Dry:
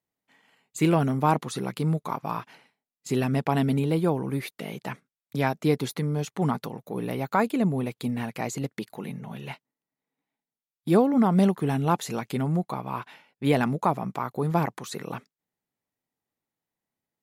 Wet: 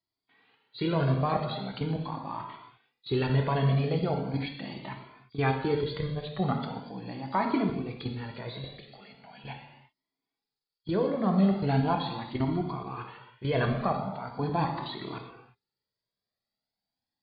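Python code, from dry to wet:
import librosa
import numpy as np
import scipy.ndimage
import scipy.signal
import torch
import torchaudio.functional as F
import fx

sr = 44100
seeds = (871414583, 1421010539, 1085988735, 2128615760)

y = fx.freq_compress(x, sr, knee_hz=3200.0, ratio=4.0)
y = fx.highpass(y, sr, hz=1300.0, slope=6, at=(8.64, 9.44))
y = fx.level_steps(y, sr, step_db=13)
y = fx.air_absorb(y, sr, metres=85.0)
y = fx.rev_gated(y, sr, seeds[0], gate_ms=380, shape='falling', drr_db=2.0)
y = fx.comb_cascade(y, sr, direction='rising', hz=0.4)
y = F.gain(torch.from_numpy(y), 4.5).numpy()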